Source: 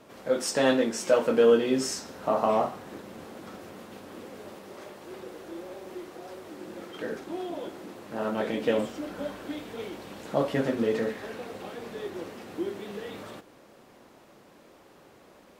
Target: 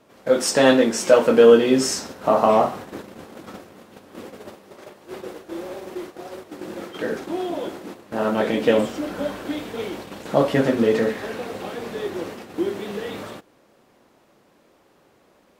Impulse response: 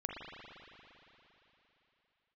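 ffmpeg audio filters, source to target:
-af "agate=range=0.282:threshold=0.00794:ratio=16:detection=peak,volume=2.51"

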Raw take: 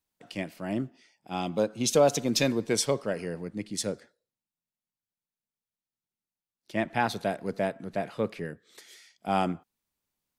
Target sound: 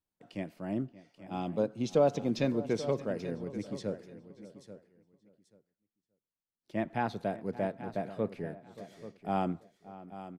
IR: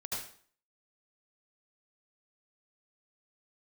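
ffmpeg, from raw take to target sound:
-filter_complex "[0:a]tiltshelf=f=1300:g=5,asplit=2[s0][s1];[s1]aecho=0:1:835|1670:0.2|0.0359[s2];[s0][s2]amix=inputs=2:normalize=0,acrossover=split=5500[s3][s4];[s4]acompressor=threshold=0.00141:ratio=4:attack=1:release=60[s5];[s3][s5]amix=inputs=2:normalize=0,asplit=2[s6][s7];[s7]adelay=577.3,volume=0.141,highshelf=f=4000:g=-13[s8];[s6][s8]amix=inputs=2:normalize=0,volume=0.422"

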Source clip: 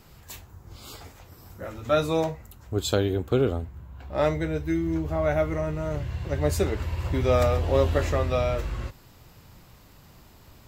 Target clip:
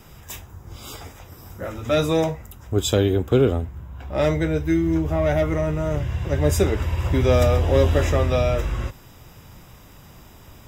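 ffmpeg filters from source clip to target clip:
-filter_complex "[0:a]acrossover=split=490|2500[s0][s1][s2];[s1]asoftclip=type=tanh:threshold=0.0398[s3];[s0][s3][s2]amix=inputs=3:normalize=0,asuperstop=centerf=4300:order=12:qfactor=6.9,volume=2"

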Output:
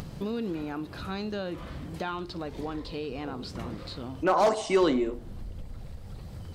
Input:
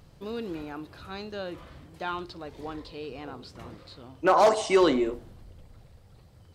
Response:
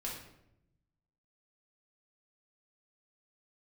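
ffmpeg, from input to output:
-af "asubboost=boost=2:cutoff=81,acompressor=mode=upward:threshold=0.0562:ratio=2.5,equalizer=f=200:t=o:w=1.1:g=7,volume=0.668"

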